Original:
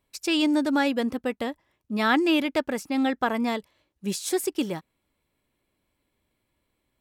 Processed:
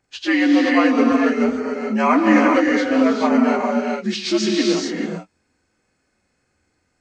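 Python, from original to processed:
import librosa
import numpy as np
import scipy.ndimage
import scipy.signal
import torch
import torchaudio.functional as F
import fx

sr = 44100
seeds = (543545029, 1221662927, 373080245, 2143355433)

y = fx.partial_stretch(x, sr, pct=83)
y = fx.rev_gated(y, sr, seeds[0], gate_ms=460, shape='rising', drr_db=-0.5)
y = y * librosa.db_to_amplitude(7.0)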